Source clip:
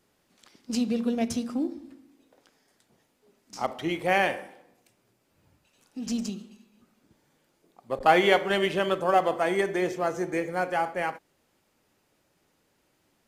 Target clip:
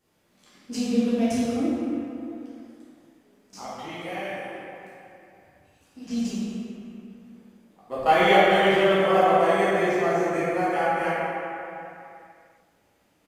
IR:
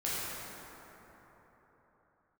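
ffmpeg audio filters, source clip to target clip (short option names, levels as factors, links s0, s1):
-filter_complex "[0:a]asettb=1/sr,asplit=3[s0][s1][s2];[s0]atrim=end=3.604[s3];[s1]atrim=start=3.6:end=6.11,asetpts=PTS-STARTPTS,afade=t=in:d=0.004:c=qsin,afade=t=out:st=2.506:d=0.004:c=qsin,acrossover=split=660|4100[s4][s5][s6];[s4]acompressor=threshold=0.00891:ratio=4[s7];[s5]acompressor=threshold=0.01:ratio=4[s8];[s6]acompressor=threshold=0.00158:ratio=4[s9];[s7][s8][s9]amix=inputs=3:normalize=0[s10];[s2]atrim=start=6.106[s11];[s3][s10]acrossfade=d=0.004:c1=hsin:c2=qsin[s12];[s12][s11]acrossfade=d=0.004:c1=qsin:c2=hsin,asplit=2[s13][s14];[s14]adelay=382,lowpass=f=2000:p=1,volume=0.0794,asplit=2[s15][s16];[s16]adelay=382,lowpass=f=2000:p=1,volume=0.46,asplit=2[s17][s18];[s18]adelay=382,lowpass=f=2000:p=1,volume=0.46[s19];[s13][s15][s17][s19]amix=inputs=4:normalize=0[s20];[1:a]atrim=start_sample=2205,asetrate=66150,aresample=44100[s21];[s20][s21]afir=irnorm=-1:irlink=0"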